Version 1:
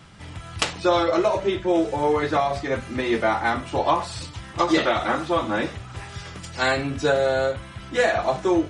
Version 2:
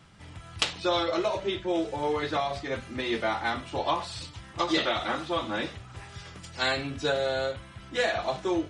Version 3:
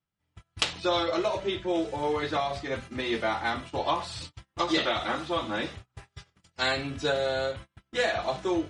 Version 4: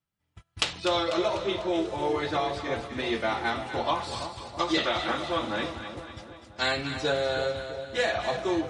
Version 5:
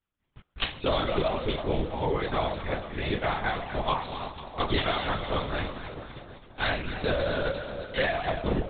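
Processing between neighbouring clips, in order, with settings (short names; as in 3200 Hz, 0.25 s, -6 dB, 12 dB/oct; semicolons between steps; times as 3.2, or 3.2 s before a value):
dynamic EQ 3600 Hz, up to +8 dB, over -43 dBFS, Q 1.2; gain -7.5 dB
gate -40 dBFS, range -33 dB
split-band echo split 1000 Hz, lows 0.331 s, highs 0.247 s, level -9 dB
LPC vocoder at 8 kHz whisper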